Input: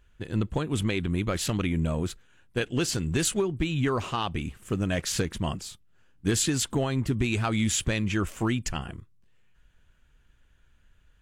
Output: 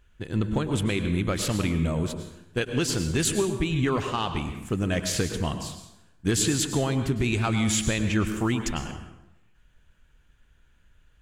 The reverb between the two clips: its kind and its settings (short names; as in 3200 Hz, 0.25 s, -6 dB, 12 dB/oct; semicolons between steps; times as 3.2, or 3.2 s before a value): plate-style reverb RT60 0.88 s, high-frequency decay 0.75×, pre-delay 90 ms, DRR 7.5 dB; gain +1 dB